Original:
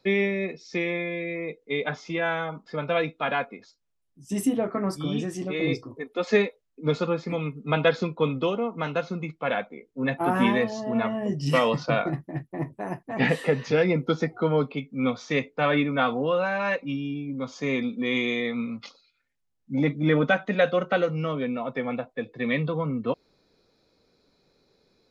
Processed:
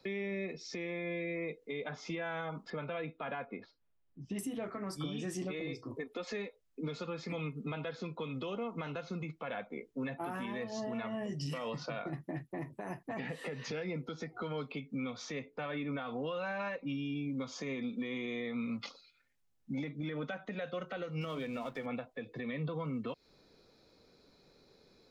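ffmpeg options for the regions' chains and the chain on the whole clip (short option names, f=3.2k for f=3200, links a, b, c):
-filter_complex "[0:a]asettb=1/sr,asplit=3[a][b][c];[a]atrim=end=2.704[d];[b]atrim=start=2.7:end=4.39,asetpts=PTS-STARTPTS,afade=t=in:d=0.004:c=qsin,afade=t=out:st=1.686:d=0.004:c=qsin,lowpass=f=4.3k:w=0.5412,lowpass=f=4.3k:w=1.3066,aemphasis=mode=reproduction:type=75fm[e];[c]atrim=start=4.386[f];[d][e]acrossfade=d=0.004:c1=hsin:c2=qsin[g];[g][f]acrossfade=d=0.004:c1=qsin:c2=hsin,asettb=1/sr,asplit=3[h][i][j];[h]atrim=end=21.214[k];[i]atrim=start=21.21:end=21.86,asetpts=PTS-STARTPTS,afade=t=in:d=0.004:c=qsin,afade=t=out:st=0.646:d=0.004:c=qsin,aemphasis=mode=production:type=50kf,bandreject=f=50:t=h:w=6,bandreject=f=100:t=h:w=6,bandreject=f=150:t=h:w=6,bandreject=f=200:t=h:w=6,bandreject=f=250:t=h:w=6,bandreject=f=300:t=h:w=6,aeval=exprs='sgn(val(0))*max(abs(val(0))-0.00355,0)':c=same[l];[j]atrim=start=21.856[m];[k][l]acrossfade=d=0.004:c1=hsin:c2=qsin[n];[n][m]acrossfade=d=0.004:c1=qsin:c2=hsin,acrossover=split=100|1600[o][p][q];[o]acompressor=threshold=-58dB:ratio=4[r];[p]acompressor=threshold=-35dB:ratio=4[s];[q]acompressor=threshold=-44dB:ratio=4[t];[r][s][t]amix=inputs=3:normalize=0,alimiter=level_in=7.5dB:limit=-24dB:level=0:latency=1:release=152,volume=-7.5dB,volume=1.5dB"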